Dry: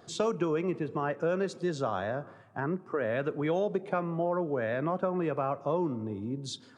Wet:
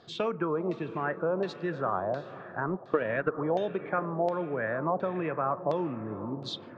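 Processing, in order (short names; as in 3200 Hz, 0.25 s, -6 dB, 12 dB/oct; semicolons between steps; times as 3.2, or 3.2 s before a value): 2.67–3.39 transient shaper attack +9 dB, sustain -9 dB; diffused feedback echo 0.463 s, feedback 51%, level -13.5 dB; LFO low-pass saw down 1.4 Hz 730–4400 Hz; gain -2 dB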